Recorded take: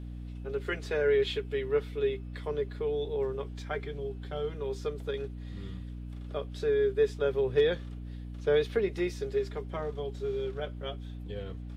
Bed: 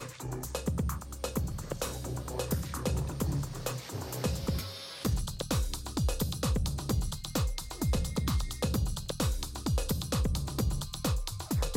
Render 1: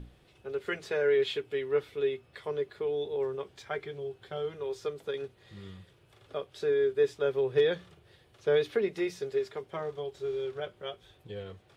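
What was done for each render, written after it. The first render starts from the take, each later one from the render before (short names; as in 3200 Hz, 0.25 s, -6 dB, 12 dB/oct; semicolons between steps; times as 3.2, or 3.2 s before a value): notches 60/120/180/240/300 Hz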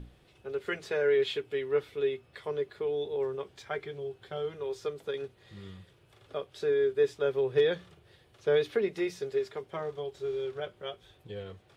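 nothing audible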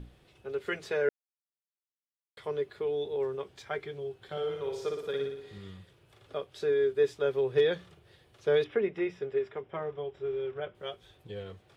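1.09–2.37 mute; 4.23–5.58 flutter echo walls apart 10 m, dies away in 0.75 s; 8.64–10.75 polynomial smoothing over 25 samples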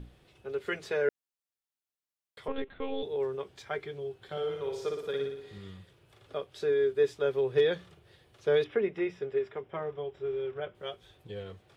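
2.48–3.03 monotone LPC vocoder at 8 kHz 270 Hz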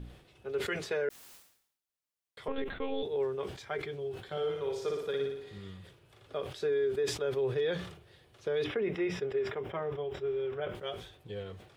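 limiter -24 dBFS, peak gain reduction 8 dB; sustainer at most 85 dB/s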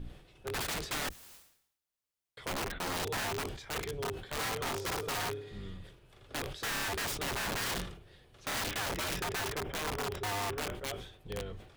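octaver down 2 oct, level 0 dB; wrapped overs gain 30 dB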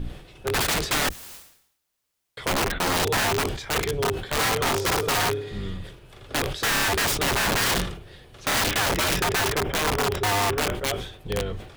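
gain +12 dB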